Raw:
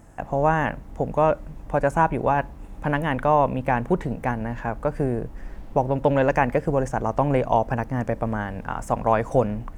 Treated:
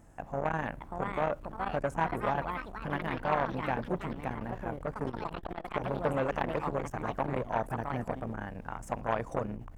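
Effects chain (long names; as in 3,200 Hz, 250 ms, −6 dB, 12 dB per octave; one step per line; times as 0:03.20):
delay with pitch and tempo change per echo 661 ms, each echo +4 semitones, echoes 3, each echo −6 dB
saturating transformer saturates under 950 Hz
level −8 dB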